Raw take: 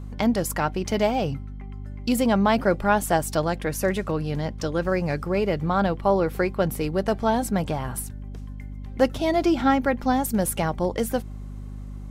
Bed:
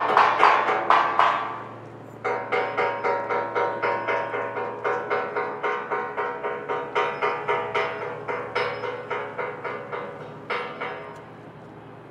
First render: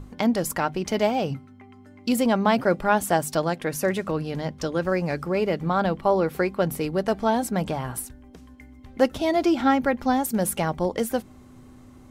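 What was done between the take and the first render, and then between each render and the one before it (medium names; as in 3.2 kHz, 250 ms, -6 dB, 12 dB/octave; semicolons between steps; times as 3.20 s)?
hum notches 50/100/150/200 Hz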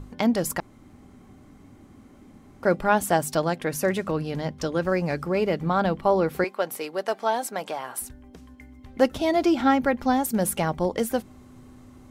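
0.60–2.63 s: room tone; 6.44–8.02 s: high-pass 500 Hz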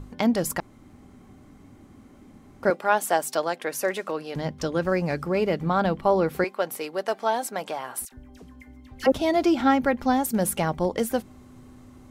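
2.70–4.36 s: high-pass 400 Hz; 8.05–9.12 s: phase dispersion lows, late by 73 ms, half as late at 1.2 kHz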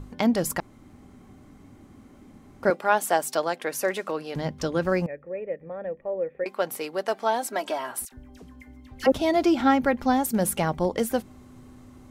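5.06–6.46 s: cascade formant filter e; 7.50–7.91 s: comb 3.1 ms, depth 88%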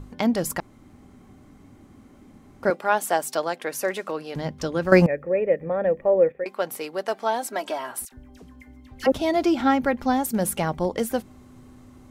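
4.92–6.32 s: gain +10.5 dB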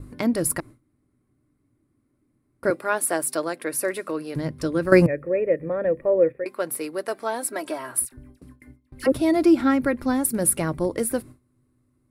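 gate with hold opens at -37 dBFS; graphic EQ with 31 bands 125 Hz +10 dB, 200 Hz -5 dB, 315 Hz +7 dB, 800 Hz -10 dB, 3.15 kHz -8 dB, 6.3 kHz -8 dB, 10 kHz +12 dB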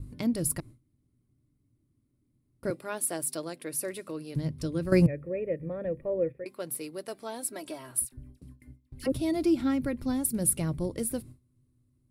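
FFT filter 140 Hz 0 dB, 310 Hz -8 dB, 1.6 kHz -15 dB, 3.1 kHz -5 dB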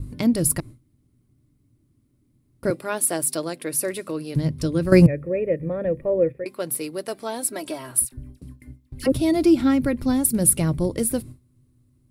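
trim +8.5 dB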